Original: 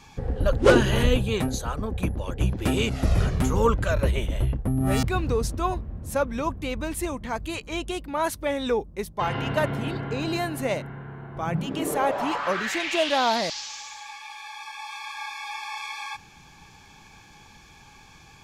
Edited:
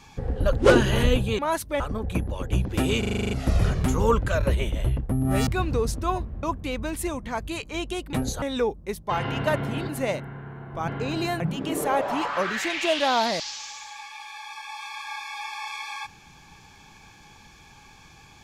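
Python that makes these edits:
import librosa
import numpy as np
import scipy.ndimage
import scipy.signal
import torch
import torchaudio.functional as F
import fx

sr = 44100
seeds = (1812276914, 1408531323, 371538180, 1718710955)

y = fx.edit(x, sr, fx.swap(start_s=1.39, length_s=0.29, other_s=8.11, other_length_s=0.41),
    fx.stutter(start_s=2.87, slice_s=0.04, count=9),
    fx.cut(start_s=5.99, length_s=0.42),
    fx.move(start_s=9.99, length_s=0.52, to_s=11.5), tone=tone)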